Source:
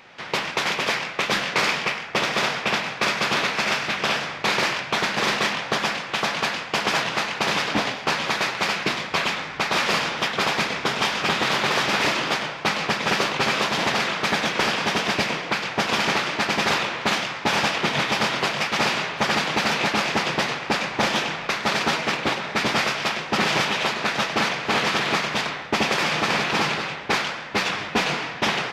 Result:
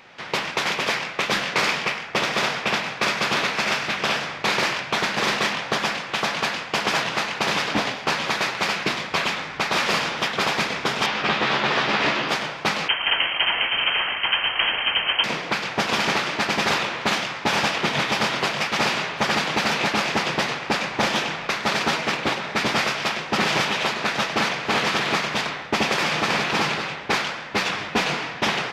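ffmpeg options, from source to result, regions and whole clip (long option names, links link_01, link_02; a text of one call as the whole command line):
ffmpeg -i in.wav -filter_complex "[0:a]asettb=1/sr,asplit=3[link_01][link_02][link_03];[link_01]atrim=end=11.064[link_04];[link_02]atrim=start=11.06:end=12.29,asetpts=PTS-STARTPTS,afade=type=in:duration=0.004:curve=qsin,afade=type=out:start_time=1.226:duration=0.004:curve=qsin,lowpass=4100,equalizer=frequency=81:width=1.1:gain=-4.5,asplit=2[link_05][link_06];[link_06]adelay=14,volume=-6.5dB[link_07];[link_05][link_07]amix=inputs=2:normalize=0,atrim=end_sample=54243[link_08];[link_03]atrim=start=12.286[link_09];[link_04][link_08]acrossfade=duration=0.004:curve1=hsin:curve2=qsin[link_10];[link_10][link_09]acrossfade=duration=0.004:curve1=qsin:curve2=hsin,asettb=1/sr,asplit=3[link_11][link_12][link_13];[link_11]atrim=end=12.884[link_14];[link_12]atrim=start=12.88:end=15.24,asetpts=PTS-STARTPTS,afade=type=in:duration=0.004:curve=qsin,afade=type=out:start_time=2.356:duration=0.004:curve=qsin,aemphasis=mode=reproduction:type=bsi,lowpass=frequency=2800:width_type=q:width=0.5098,lowpass=frequency=2800:width_type=q:width=0.6013,lowpass=frequency=2800:width_type=q:width=0.9,lowpass=frequency=2800:width_type=q:width=2.563,afreqshift=-3300[link_15];[link_13]atrim=start=15.236[link_16];[link_14][link_15]acrossfade=duration=0.004:curve1=hsin:curve2=qsin[link_17];[link_17][link_16]acrossfade=duration=0.004:curve1=qsin:curve2=hsin" out.wav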